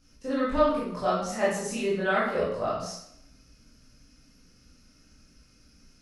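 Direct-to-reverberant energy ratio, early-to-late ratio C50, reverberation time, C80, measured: -9.0 dB, 1.0 dB, 0.75 s, 5.0 dB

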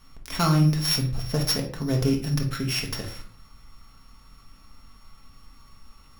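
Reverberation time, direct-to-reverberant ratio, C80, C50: 0.50 s, 0.5 dB, 13.0 dB, 8.5 dB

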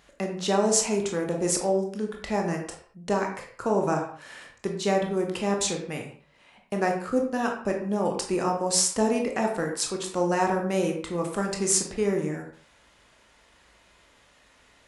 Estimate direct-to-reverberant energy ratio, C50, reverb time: 1.5 dB, 6.5 dB, not exponential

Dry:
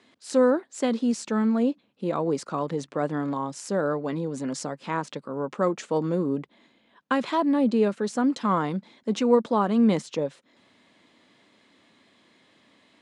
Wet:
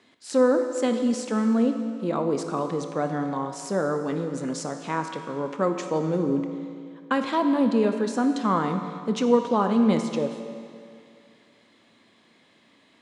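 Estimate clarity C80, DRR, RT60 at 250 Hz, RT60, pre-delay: 8.0 dB, 6.0 dB, 2.3 s, 2.3 s, 18 ms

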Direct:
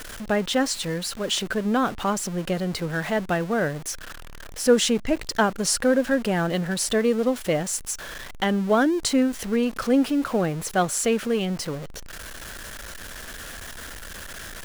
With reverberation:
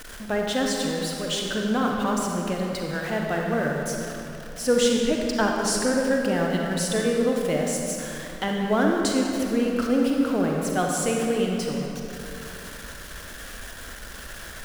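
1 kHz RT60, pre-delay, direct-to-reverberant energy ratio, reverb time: 2.8 s, 35 ms, -0.5 dB, 2.9 s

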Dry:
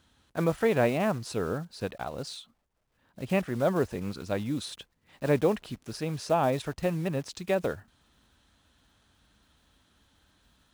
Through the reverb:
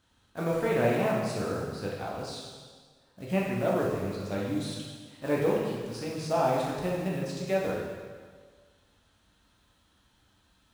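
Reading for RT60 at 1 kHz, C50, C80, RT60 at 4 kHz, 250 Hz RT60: 1.6 s, 0.5 dB, 3.0 dB, 1.5 s, 1.6 s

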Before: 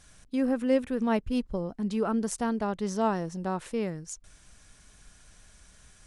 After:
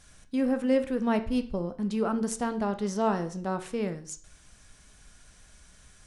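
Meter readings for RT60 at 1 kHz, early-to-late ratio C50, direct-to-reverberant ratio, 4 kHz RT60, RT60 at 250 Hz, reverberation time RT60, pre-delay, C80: 0.45 s, 13.5 dB, 8.5 dB, 0.40 s, 0.45 s, 0.45 s, 13 ms, 18.0 dB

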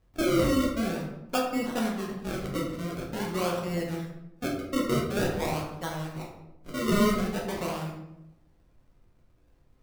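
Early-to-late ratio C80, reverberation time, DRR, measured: 7.0 dB, 0.85 s, -2.0 dB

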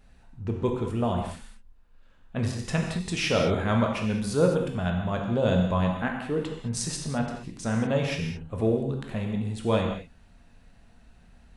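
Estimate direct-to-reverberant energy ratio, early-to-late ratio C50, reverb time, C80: 1.5 dB, 4.0 dB, not exponential, 6.0 dB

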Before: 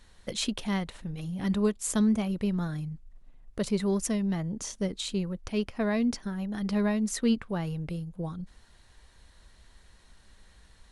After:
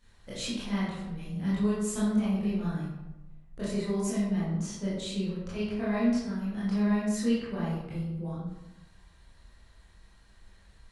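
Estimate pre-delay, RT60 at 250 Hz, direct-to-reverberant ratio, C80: 18 ms, 1.1 s, -11.0 dB, 3.0 dB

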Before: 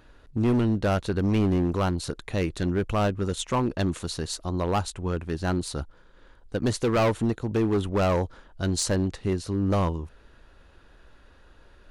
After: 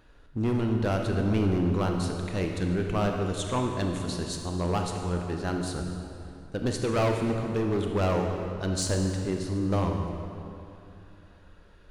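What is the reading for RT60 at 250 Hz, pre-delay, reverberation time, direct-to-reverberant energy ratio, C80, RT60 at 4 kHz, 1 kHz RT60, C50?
3.1 s, 26 ms, 2.8 s, 2.5 dB, 4.5 dB, 2.0 s, 2.7 s, 3.5 dB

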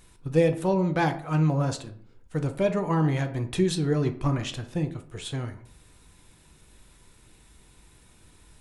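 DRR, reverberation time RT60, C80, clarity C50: 6.0 dB, 0.55 s, 17.0 dB, 13.0 dB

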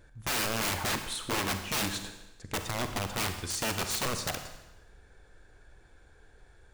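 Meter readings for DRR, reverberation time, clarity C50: 7.0 dB, 1.0 s, 8.5 dB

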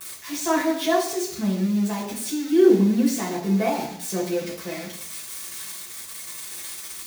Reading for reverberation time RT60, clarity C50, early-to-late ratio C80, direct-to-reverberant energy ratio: 0.70 s, 6.0 dB, 9.5 dB, -7.0 dB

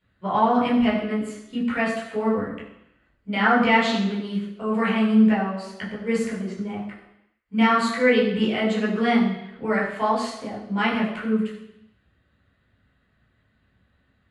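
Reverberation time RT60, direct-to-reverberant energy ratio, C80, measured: 0.85 s, -6.0 dB, 7.0 dB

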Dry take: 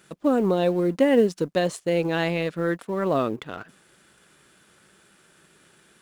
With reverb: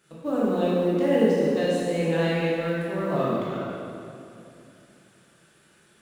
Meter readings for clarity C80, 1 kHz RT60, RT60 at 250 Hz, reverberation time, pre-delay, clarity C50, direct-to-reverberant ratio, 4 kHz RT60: -1.5 dB, 2.5 s, 3.3 s, 2.6 s, 10 ms, -3.5 dB, -8.0 dB, 2.0 s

